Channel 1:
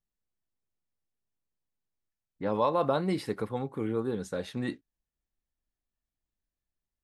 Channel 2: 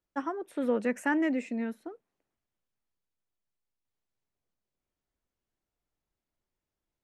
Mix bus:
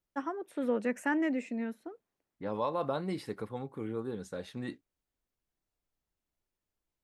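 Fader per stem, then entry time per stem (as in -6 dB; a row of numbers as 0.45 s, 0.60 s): -6.0 dB, -2.5 dB; 0.00 s, 0.00 s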